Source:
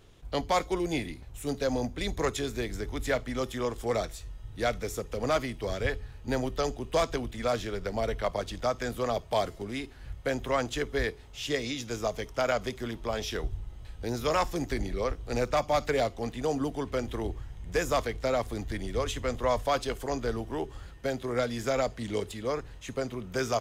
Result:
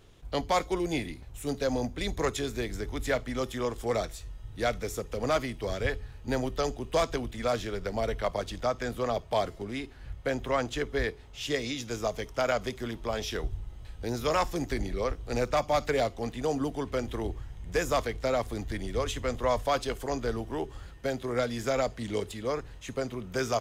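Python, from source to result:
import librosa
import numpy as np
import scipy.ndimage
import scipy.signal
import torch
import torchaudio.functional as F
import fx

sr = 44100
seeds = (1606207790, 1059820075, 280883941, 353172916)

y = fx.high_shelf(x, sr, hz=5800.0, db=-5.0, at=(8.63, 11.41))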